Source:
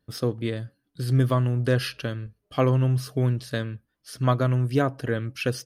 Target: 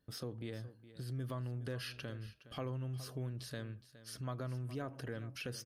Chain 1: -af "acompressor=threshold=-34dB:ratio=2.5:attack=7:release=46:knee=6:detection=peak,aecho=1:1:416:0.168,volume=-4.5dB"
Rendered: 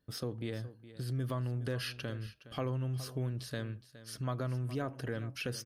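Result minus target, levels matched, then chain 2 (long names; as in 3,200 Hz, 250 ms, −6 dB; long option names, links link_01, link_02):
downward compressor: peak gain reduction −5.5 dB
-af "acompressor=threshold=-43dB:ratio=2.5:attack=7:release=46:knee=6:detection=peak,aecho=1:1:416:0.168,volume=-4.5dB"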